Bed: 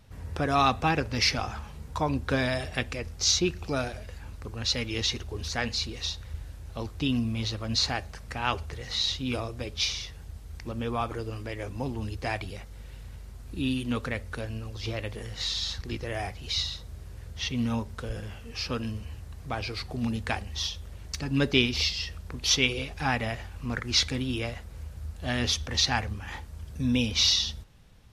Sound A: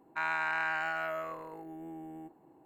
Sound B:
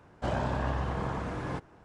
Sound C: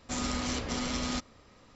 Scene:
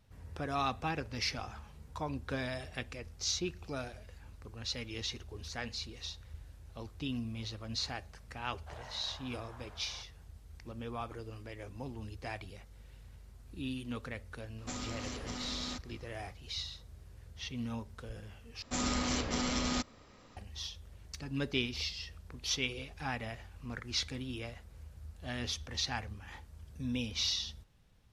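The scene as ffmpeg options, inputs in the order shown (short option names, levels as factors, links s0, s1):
-filter_complex "[3:a]asplit=2[s0][s1];[0:a]volume=0.299[s2];[2:a]highpass=f=610:w=0.5412,highpass=f=610:w=1.3066[s3];[s0]acompressor=threshold=0.01:ratio=3:attack=62:release=331:knee=1:detection=peak[s4];[s2]asplit=2[s5][s6];[s5]atrim=end=18.624[s7];[s1]atrim=end=1.75,asetpts=PTS-STARTPTS,volume=0.944[s8];[s6]atrim=start=20.366[s9];[s3]atrim=end=1.84,asetpts=PTS-STARTPTS,volume=0.158,afade=t=in:d=0.004:c=hsin,afade=t=out:st=1.836:d=0.004:c=hsin,adelay=8440[s10];[s4]atrim=end=1.75,asetpts=PTS-STARTPTS,volume=0.708,afade=t=in:d=0.004:c=hsin,afade=t=out:st=1.746:d=0.004:c=hsin,adelay=14580[s11];[s7][s8]acrossfade=d=0.004:c1=hsin:c2=hsin[s12];[s12][s9]acrossfade=d=0.004:c1=hsin:c2=hsin[s13];[s13][s10][s11]amix=inputs=3:normalize=0"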